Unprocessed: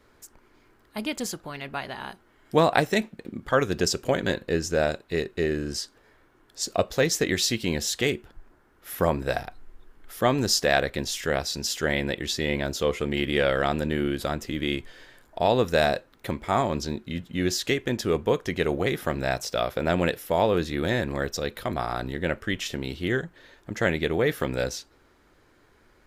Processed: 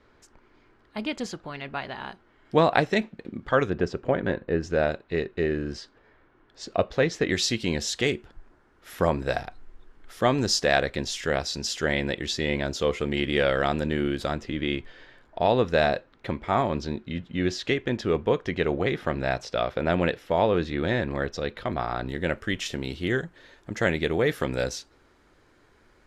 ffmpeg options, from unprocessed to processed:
-af "asetnsamples=n=441:p=0,asendcmd='3.7 lowpass f 1800;4.63 lowpass f 3100;7.3 lowpass f 7100;14.41 lowpass f 3900;22.09 lowpass f 9700',lowpass=4.5k"

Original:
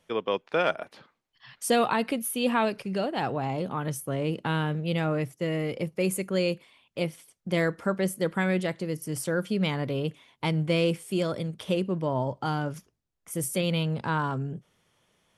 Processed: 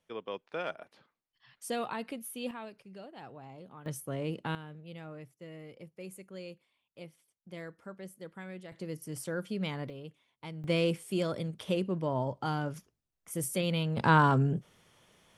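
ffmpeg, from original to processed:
-af "asetnsamples=n=441:p=0,asendcmd='2.51 volume volume -19dB;3.86 volume volume -6.5dB;4.55 volume volume -18.5dB;8.72 volume volume -8dB;9.9 volume volume -16dB;10.64 volume volume -4dB;13.97 volume volume 5dB',volume=-11.5dB"

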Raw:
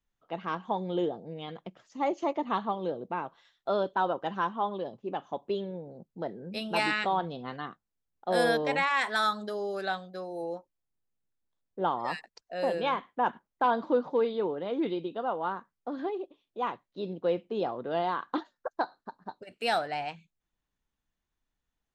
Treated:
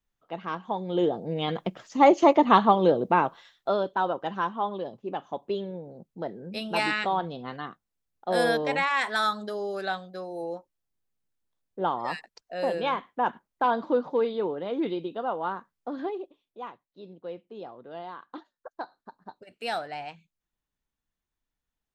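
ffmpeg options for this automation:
-af "volume=19dB,afade=t=in:st=0.86:d=0.64:silence=0.266073,afade=t=out:st=3.23:d=0.54:silence=0.298538,afade=t=out:st=16.04:d=0.69:silence=0.266073,afade=t=in:st=18.53:d=0.66:silence=0.446684"

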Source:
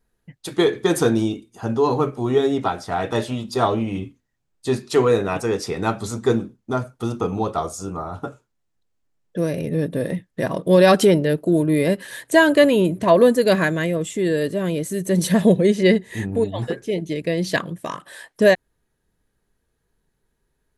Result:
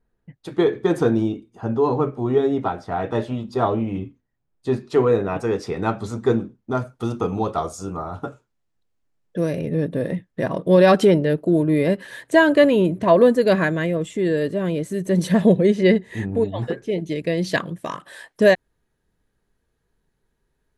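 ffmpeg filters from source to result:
-af "asetnsamples=n=441:p=0,asendcmd='5.4 lowpass f 2200;6.75 lowpass f 5600;9.58 lowpass f 2800;16.99 lowpass f 6200',lowpass=f=1.3k:p=1"

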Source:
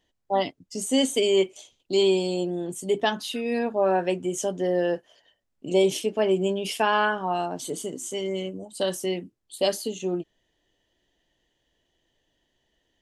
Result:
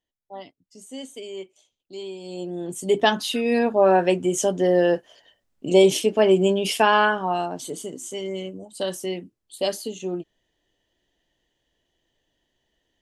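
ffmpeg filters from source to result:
-af "volume=5.5dB,afade=t=in:st=2.19:d=0.28:silence=0.281838,afade=t=in:st=2.47:d=0.6:silence=0.354813,afade=t=out:st=6.75:d=0.98:silence=0.473151"

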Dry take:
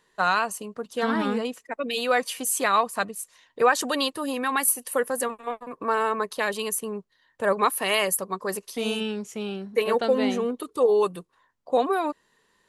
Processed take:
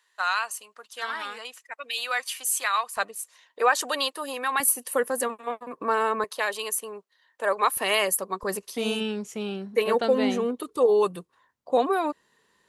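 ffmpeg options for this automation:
-af "asetnsamples=n=441:p=0,asendcmd='2.97 highpass f 510;4.6 highpass f 160;6.24 highpass f 510;7.77 highpass f 240;8.43 highpass f 55',highpass=1.2k"

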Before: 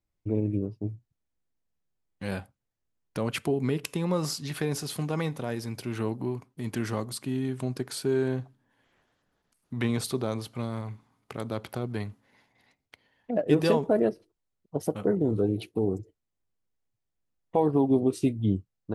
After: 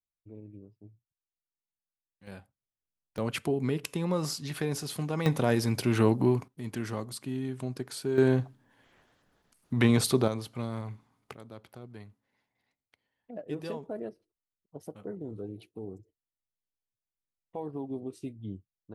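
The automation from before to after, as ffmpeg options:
-af "asetnsamples=n=441:p=0,asendcmd='2.27 volume volume -12.5dB;3.18 volume volume -2dB;5.26 volume volume 7dB;6.48 volume volume -4dB;8.18 volume volume 5dB;10.28 volume volume -2dB;11.34 volume volume -14dB',volume=-20dB"

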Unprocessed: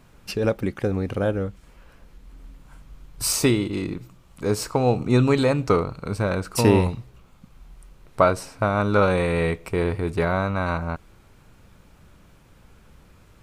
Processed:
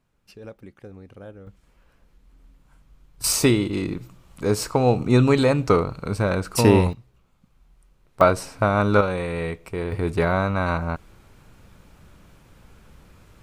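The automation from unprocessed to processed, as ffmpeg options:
-af "asetnsamples=n=441:p=0,asendcmd='1.47 volume volume -9dB;3.24 volume volume 1.5dB;6.93 volume volume -10.5dB;8.21 volume volume 2dB;9.01 volume volume -5dB;9.92 volume volume 1.5dB',volume=-18dB"

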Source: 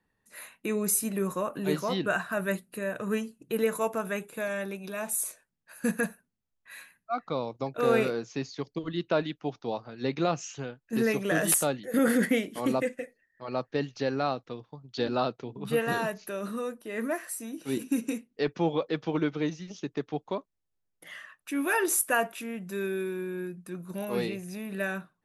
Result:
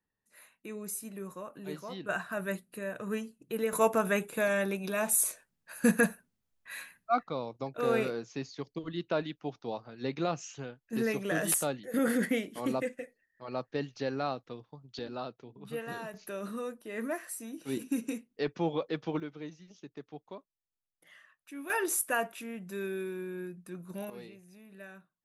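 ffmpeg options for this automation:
-af "asetnsamples=n=441:p=0,asendcmd='2.09 volume volume -5dB;3.73 volume volume 3.5dB;7.23 volume volume -4.5dB;14.99 volume volume -11dB;16.14 volume volume -4dB;19.2 volume volume -13dB;21.7 volume volume -4.5dB;24.1 volume volume -17dB',volume=-12dB"

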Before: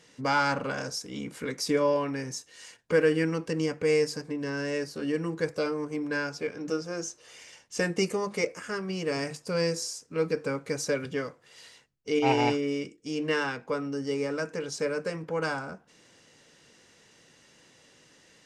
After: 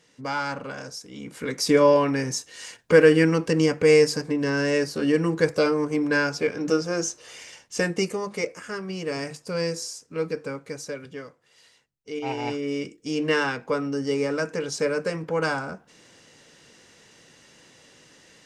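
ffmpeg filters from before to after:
-af "volume=19dB,afade=t=in:st=1.18:d=0.63:silence=0.281838,afade=t=out:st=7.09:d=1.05:silence=0.421697,afade=t=out:st=10.13:d=0.83:silence=0.473151,afade=t=in:st=12.42:d=0.52:silence=0.281838"

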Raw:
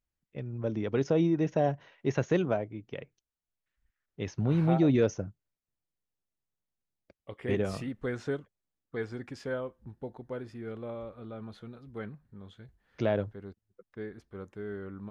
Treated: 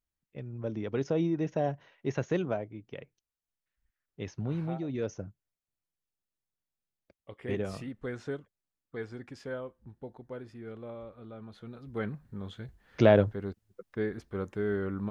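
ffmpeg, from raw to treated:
-af "volume=18dB,afade=t=out:st=4.22:d=0.65:silence=0.316228,afade=t=in:st=4.87:d=0.4:silence=0.334965,afade=t=in:st=11.52:d=0.75:silence=0.266073"

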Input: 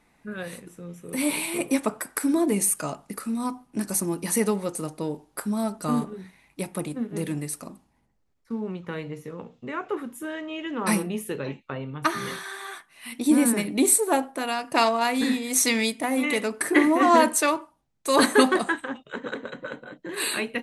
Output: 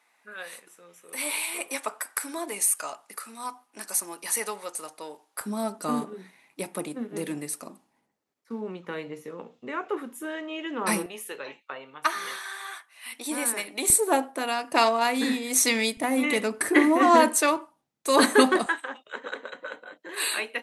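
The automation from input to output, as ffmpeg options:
-af "asetnsamples=n=441:p=0,asendcmd='5.41 highpass f 270;11.06 highpass f 670;13.9 highpass f 240;15.97 highpass f 73;16.69 highpass f 180;18.66 highpass f 550',highpass=780"

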